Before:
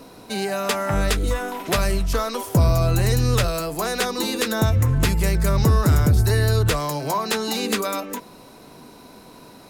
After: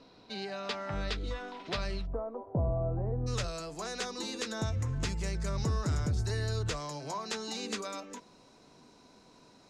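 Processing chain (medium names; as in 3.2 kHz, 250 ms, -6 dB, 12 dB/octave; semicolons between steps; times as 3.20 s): four-pole ladder low-pass 5.3 kHz, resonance 40%, from 2.05 s 880 Hz, from 3.26 s 7.7 kHz; trim -6 dB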